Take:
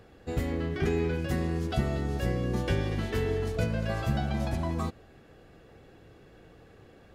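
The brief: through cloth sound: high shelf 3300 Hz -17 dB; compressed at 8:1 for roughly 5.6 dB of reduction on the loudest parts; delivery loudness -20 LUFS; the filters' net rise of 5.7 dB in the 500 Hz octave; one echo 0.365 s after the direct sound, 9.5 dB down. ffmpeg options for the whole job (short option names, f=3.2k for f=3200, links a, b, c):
-af "equalizer=f=500:t=o:g=7.5,acompressor=threshold=-26dB:ratio=8,highshelf=f=3.3k:g=-17,aecho=1:1:365:0.335,volume=11.5dB"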